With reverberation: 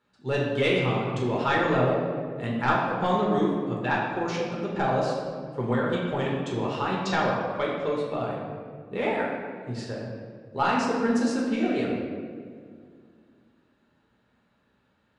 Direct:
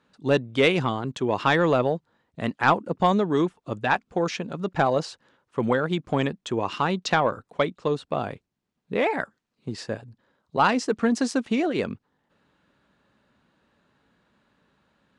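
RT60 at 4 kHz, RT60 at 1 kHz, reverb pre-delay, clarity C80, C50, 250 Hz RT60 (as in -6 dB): 1.1 s, 1.8 s, 5 ms, 2.5 dB, 0.5 dB, 2.6 s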